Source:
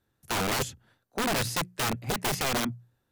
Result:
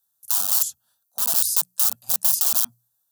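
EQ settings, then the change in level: RIAA curve recording; treble shelf 3.3 kHz +9.5 dB; static phaser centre 890 Hz, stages 4; -7.5 dB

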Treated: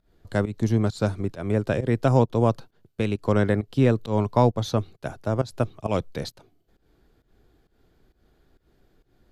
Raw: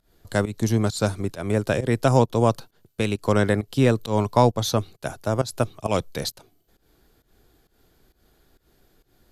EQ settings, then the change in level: low-pass 2 kHz 6 dB/octave; peaking EQ 910 Hz -2.5 dB 2 oct; 0.0 dB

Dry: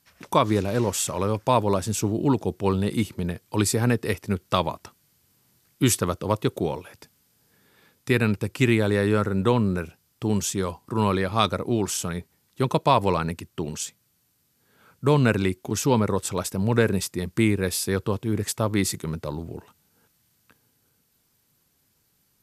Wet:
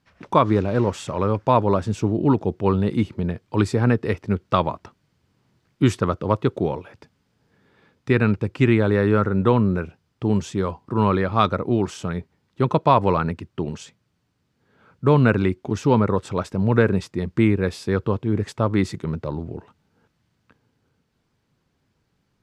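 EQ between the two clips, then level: tape spacing loss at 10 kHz 24 dB; dynamic bell 1.3 kHz, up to +4 dB, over -39 dBFS, Q 2.3; +4.0 dB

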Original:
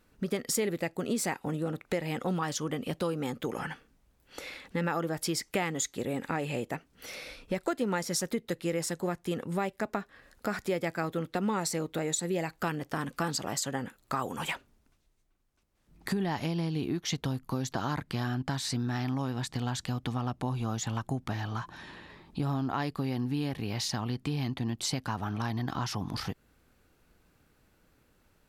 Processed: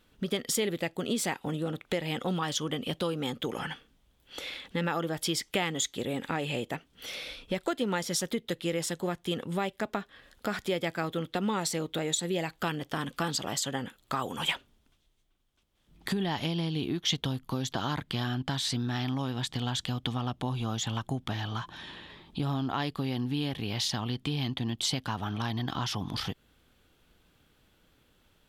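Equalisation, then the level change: peaking EQ 3.3 kHz +11.5 dB 0.44 oct; 0.0 dB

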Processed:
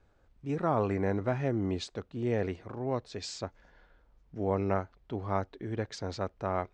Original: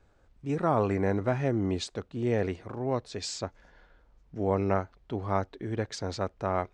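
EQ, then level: distance through air 83 m; treble shelf 7.5 kHz +7.5 dB; -2.5 dB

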